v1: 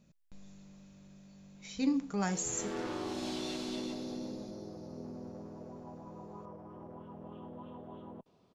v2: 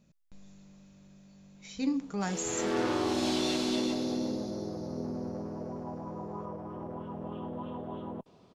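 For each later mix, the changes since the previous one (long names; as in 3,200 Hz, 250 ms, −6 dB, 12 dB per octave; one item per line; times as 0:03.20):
background +8.5 dB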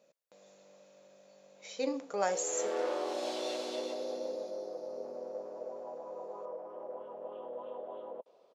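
background −8.5 dB
master: add high-pass with resonance 530 Hz, resonance Q 4.8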